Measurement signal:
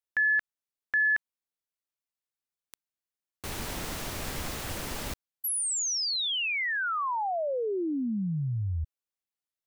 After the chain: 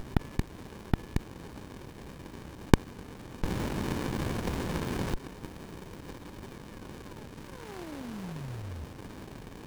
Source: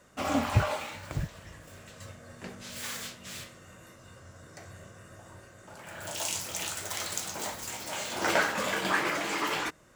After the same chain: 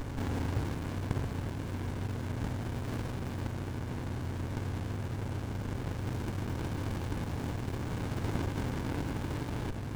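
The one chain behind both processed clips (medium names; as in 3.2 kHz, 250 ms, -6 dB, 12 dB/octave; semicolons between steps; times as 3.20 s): spectral levelling over time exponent 0.2; sliding maximum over 65 samples; trim -11.5 dB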